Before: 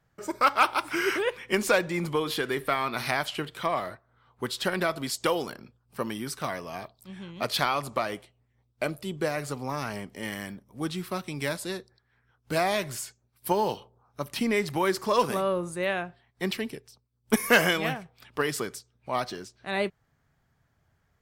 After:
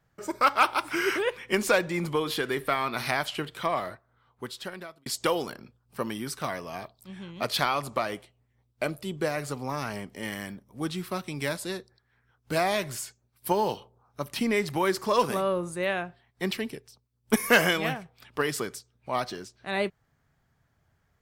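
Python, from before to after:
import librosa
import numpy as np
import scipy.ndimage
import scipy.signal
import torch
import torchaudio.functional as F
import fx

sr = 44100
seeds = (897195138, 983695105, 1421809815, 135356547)

y = fx.edit(x, sr, fx.fade_out_span(start_s=3.89, length_s=1.17), tone=tone)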